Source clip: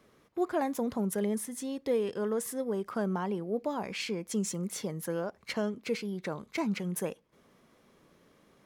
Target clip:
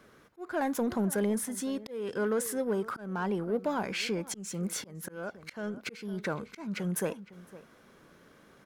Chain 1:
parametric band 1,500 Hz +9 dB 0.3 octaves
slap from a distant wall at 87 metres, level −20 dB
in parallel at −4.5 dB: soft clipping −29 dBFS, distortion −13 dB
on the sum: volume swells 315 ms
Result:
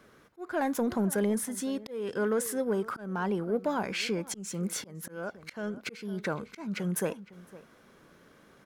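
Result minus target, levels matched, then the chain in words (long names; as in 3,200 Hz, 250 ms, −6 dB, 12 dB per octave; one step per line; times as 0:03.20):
soft clipping: distortion −6 dB
parametric band 1,500 Hz +9 dB 0.3 octaves
slap from a distant wall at 87 metres, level −20 dB
in parallel at −4.5 dB: soft clipping −36 dBFS, distortion −7 dB
on the sum: volume swells 315 ms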